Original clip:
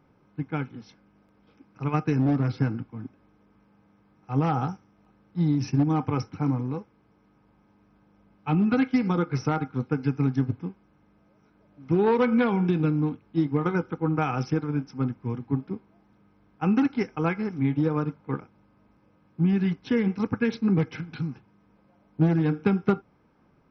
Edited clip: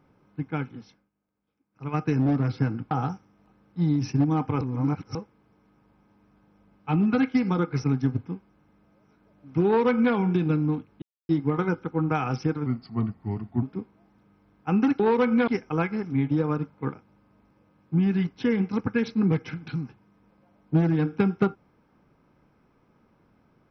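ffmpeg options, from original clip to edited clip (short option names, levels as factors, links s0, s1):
-filter_complex "[0:a]asplit=12[s0][s1][s2][s3][s4][s5][s6][s7][s8][s9][s10][s11];[s0]atrim=end=1.1,asetpts=PTS-STARTPTS,afade=t=out:st=0.78:d=0.32:silence=0.0944061[s12];[s1]atrim=start=1.1:end=1.71,asetpts=PTS-STARTPTS,volume=0.0944[s13];[s2]atrim=start=1.71:end=2.912,asetpts=PTS-STARTPTS,afade=t=in:d=0.32:silence=0.0944061[s14];[s3]atrim=start=4.498:end=6.202[s15];[s4]atrim=start=6.198:end=6.742,asetpts=PTS-STARTPTS,areverse[s16];[s5]atrim=start=6.738:end=9.432[s17];[s6]atrim=start=10.178:end=13.36,asetpts=PTS-STARTPTS,afade=t=out:st=3.178:d=0.004:c=hsin,apad=pad_dur=0.27[s18];[s7]atrim=start=13.36:end=14.734,asetpts=PTS-STARTPTS,afade=t=in:d=0.004:c=hsin[s19];[s8]atrim=start=14.73:end=15.57,asetpts=PTS-STARTPTS,asetrate=38367,aresample=44100,atrim=end_sample=42579,asetpts=PTS-STARTPTS[s20];[s9]atrim=start=15.566:end=16.942[s21];[s10]atrim=start=11.998:end=12.482[s22];[s11]atrim=start=16.938[s23];[s12][s13][s14]concat=n=3:v=0:a=1[s24];[s24][s15]acrossfade=d=0.004:c1=hsin:c2=hsin[s25];[s25][s16]acrossfade=d=0.004:c1=hsin:c2=hsin[s26];[s26][s17]acrossfade=d=0.004:c1=hsin:c2=hsin[s27];[s18][s19]concat=n=2:v=0:a=1[s28];[s27][s28]acrossfade=d=0.004:c1=hsin:c2=hsin[s29];[s29][s20]acrossfade=d=0.004:c1=hsin:c2=hsin[s30];[s30][s21]acrossfade=d=0.004:c1=hsin:c2=hsin[s31];[s31][s22]acrossfade=d=0.004:c1=hsin:c2=hsin[s32];[s32][s23]acrossfade=d=0.004:c1=hsin:c2=hsin"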